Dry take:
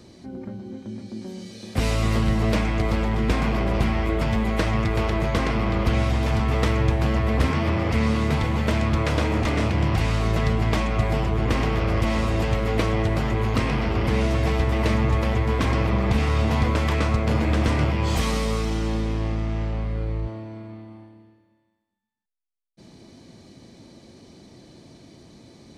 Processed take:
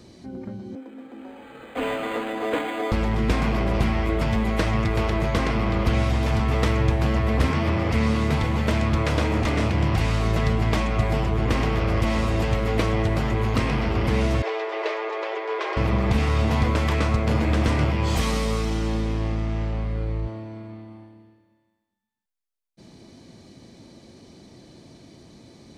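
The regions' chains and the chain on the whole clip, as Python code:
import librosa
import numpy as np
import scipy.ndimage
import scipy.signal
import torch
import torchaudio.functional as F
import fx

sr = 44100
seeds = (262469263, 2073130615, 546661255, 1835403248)

y = fx.chain(x, sr, fx.steep_highpass(hz=260.0, slope=72),
    fx.comb(ms=4.1, depth=0.81),
    fx.resample_linear(factor=8), at=(0.75, 2.92))
y = fx.chain(y, sr, fx.brickwall_highpass(low_hz=330.0),
    fx.air_absorb(metres=150.0),
    fx.comb(ms=4.9, depth=0.35), at=(14.42, 15.77))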